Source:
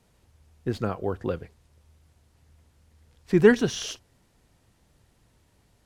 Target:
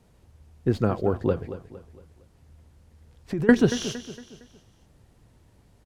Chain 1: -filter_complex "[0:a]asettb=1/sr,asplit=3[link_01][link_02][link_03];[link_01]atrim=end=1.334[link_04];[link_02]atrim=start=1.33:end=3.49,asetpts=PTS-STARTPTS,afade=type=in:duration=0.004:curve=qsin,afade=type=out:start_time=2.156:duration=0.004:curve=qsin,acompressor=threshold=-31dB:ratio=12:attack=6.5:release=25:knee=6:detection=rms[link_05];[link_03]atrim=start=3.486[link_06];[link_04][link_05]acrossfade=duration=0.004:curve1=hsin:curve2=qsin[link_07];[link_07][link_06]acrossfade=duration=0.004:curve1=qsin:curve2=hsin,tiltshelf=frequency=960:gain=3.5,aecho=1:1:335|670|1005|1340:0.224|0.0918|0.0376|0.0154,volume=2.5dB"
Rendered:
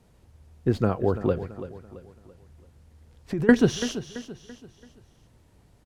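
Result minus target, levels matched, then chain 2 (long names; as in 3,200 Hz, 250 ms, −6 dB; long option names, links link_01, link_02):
echo 105 ms late
-filter_complex "[0:a]asettb=1/sr,asplit=3[link_01][link_02][link_03];[link_01]atrim=end=1.334[link_04];[link_02]atrim=start=1.33:end=3.49,asetpts=PTS-STARTPTS,afade=type=in:duration=0.004:curve=qsin,afade=type=out:start_time=2.156:duration=0.004:curve=qsin,acompressor=threshold=-31dB:ratio=12:attack=6.5:release=25:knee=6:detection=rms[link_05];[link_03]atrim=start=3.486[link_06];[link_04][link_05]acrossfade=duration=0.004:curve1=hsin:curve2=qsin[link_07];[link_07][link_06]acrossfade=duration=0.004:curve1=qsin:curve2=hsin,tiltshelf=frequency=960:gain=3.5,aecho=1:1:230|460|690|920:0.224|0.0918|0.0376|0.0154,volume=2.5dB"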